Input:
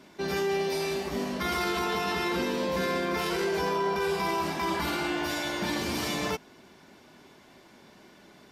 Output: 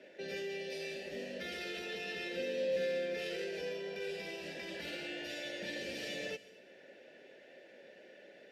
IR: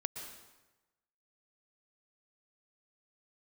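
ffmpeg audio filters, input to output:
-filter_complex "[0:a]acrossover=split=220|3000[a][b][c];[b]acompressor=threshold=-52dB:ratio=2[d];[a][d][c]amix=inputs=3:normalize=0,asplit=3[e][f][g];[e]bandpass=f=530:t=q:w=8,volume=0dB[h];[f]bandpass=f=1.84k:t=q:w=8,volume=-6dB[i];[g]bandpass=f=2.48k:t=q:w=8,volume=-9dB[j];[h][i][j]amix=inputs=3:normalize=0,asplit=2[k][l];[1:a]atrim=start_sample=2205,highshelf=f=4.1k:g=12[m];[l][m]afir=irnorm=-1:irlink=0,volume=-12dB[n];[k][n]amix=inputs=2:normalize=0,volume=9dB"

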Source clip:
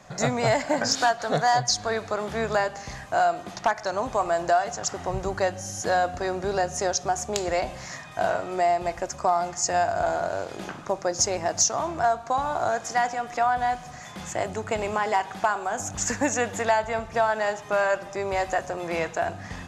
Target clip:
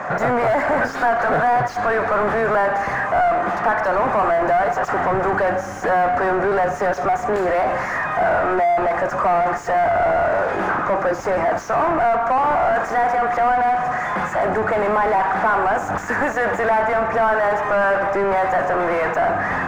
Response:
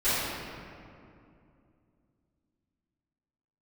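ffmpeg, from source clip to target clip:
-filter_complex "[0:a]asplit=2[a][b];[b]highpass=f=720:p=1,volume=34dB,asoftclip=type=tanh:threshold=-12dB[c];[a][c]amix=inputs=2:normalize=0,lowpass=f=2.2k:p=1,volume=-6dB,highshelf=f=2.4k:t=q:w=1.5:g=-14"

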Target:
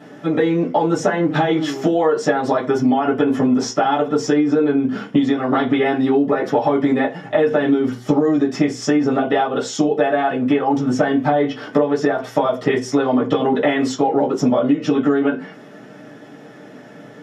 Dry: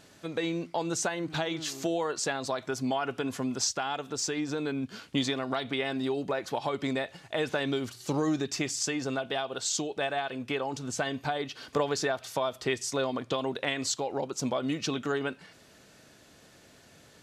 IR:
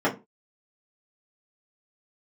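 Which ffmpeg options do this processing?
-filter_complex "[1:a]atrim=start_sample=2205[a];[0:a][a]afir=irnorm=-1:irlink=0,acompressor=threshold=-12dB:ratio=12"

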